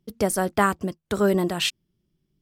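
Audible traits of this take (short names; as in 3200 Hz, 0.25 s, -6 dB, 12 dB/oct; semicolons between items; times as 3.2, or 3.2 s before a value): noise floor -76 dBFS; spectral tilt -4.0 dB/oct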